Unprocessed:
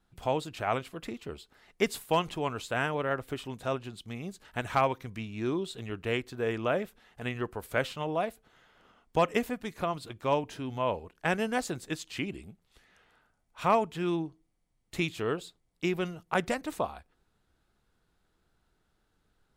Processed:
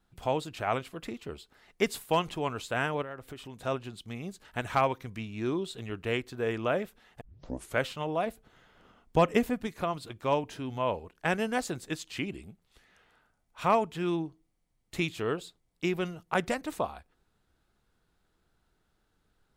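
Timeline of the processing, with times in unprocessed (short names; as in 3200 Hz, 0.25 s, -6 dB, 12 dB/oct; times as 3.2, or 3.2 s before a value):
3.02–3.65 compressor 2.5:1, threshold -42 dBFS
7.21 tape start 0.54 s
8.26–9.67 low shelf 380 Hz +6.5 dB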